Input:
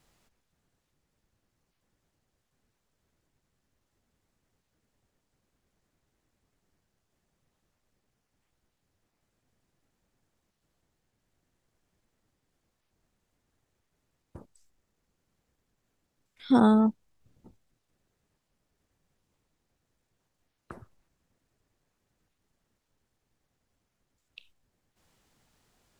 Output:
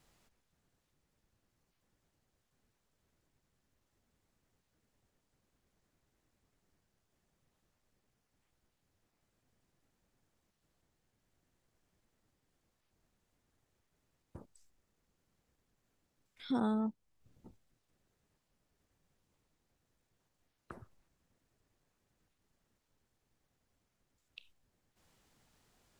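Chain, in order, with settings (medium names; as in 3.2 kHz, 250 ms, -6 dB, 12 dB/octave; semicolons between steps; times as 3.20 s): compression 1.5:1, threshold -48 dBFS, peak gain reduction 11 dB; trim -2 dB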